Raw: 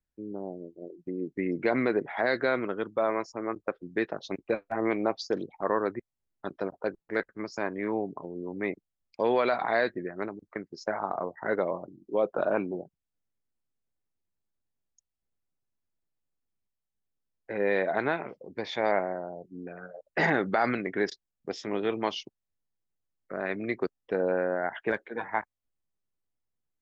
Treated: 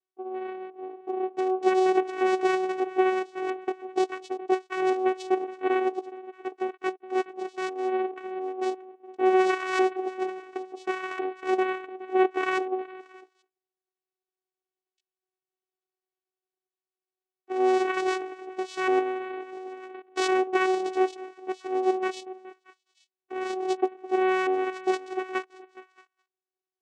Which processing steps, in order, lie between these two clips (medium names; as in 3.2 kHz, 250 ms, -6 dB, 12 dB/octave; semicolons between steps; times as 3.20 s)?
sawtooth pitch modulation +12 st, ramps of 699 ms; repeats whose band climbs or falls 209 ms, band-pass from 270 Hz, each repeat 1.4 oct, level -12 dB; vocoder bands 4, saw 374 Hz; trim +5 dB